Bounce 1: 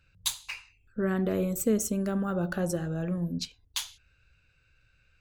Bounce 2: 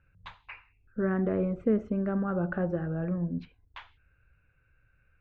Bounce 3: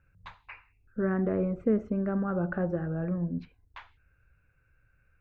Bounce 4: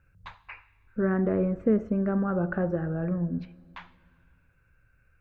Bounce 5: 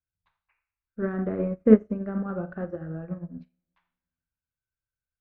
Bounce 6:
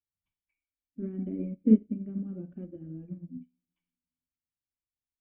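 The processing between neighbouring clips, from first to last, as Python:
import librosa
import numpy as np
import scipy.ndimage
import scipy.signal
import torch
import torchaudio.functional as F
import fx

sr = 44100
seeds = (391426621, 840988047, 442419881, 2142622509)

y1 = scipy.signal.sosfilt(scipy.signal.butter(4, 2000.0, 'lowpass', fs=sr, output='sos'), x)
y2 = fx.peak_eq(y1, sr, hz=3200.0, db=-5.5, octaves=0.56)
y3 = fx.rev_plate(y2, sr, seeds[0], rt60_s=2.2, hf_ratio=0.9, predelay_ms=0, drr_db=19.0)
y3 = y3 * librosa.db_to_amplitude(2.5)
y4 = fx.rev_schroeder(y3, sr, rt60_s=0.46, comb_ms=25, drr_db=6.0)
y4 = fx.cheby_harmonics(y4, sr, harmonics=(7,), levels_db=(-39,), full_scale_db=-10.5)
y4 = fx.upward_expand(y4, sr, threshold_db=-43.0, expansion=2.5)
y4 = y4 * librosa.db_to_amplitude(8.0)
y5 = fx.spec_quant(y4, sr, step_db=15)
y5 = fx.formant_cascade(y5, sr, vowel='i')
y5 = y5 * librosa.db_to_amplitude(3.0)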